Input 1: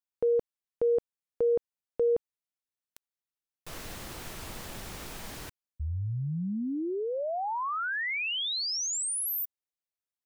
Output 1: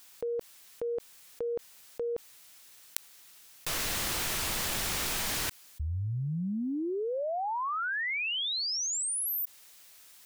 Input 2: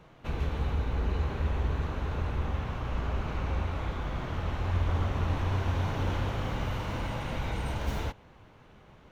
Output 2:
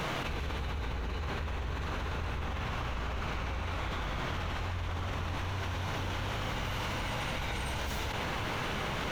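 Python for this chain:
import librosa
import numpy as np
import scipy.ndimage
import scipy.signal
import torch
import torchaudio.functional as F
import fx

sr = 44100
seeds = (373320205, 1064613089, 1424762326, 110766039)

y = fx.tilt_shelf(x, sr, db=-5.0, hz=1100.0)
y = fx.env_flatten(y, sr, amount_pct=100)
y = F.gain(torch.from_numpy(y), -5.5).numpy()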